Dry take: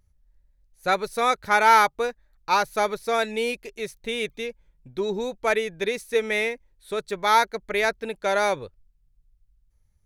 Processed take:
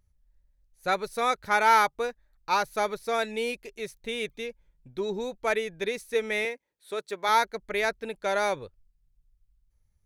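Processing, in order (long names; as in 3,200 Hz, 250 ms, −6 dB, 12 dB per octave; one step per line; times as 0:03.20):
0:06.45–0:07.29: high-pass filter 270 Hz 12 dB per octave
level −4 dB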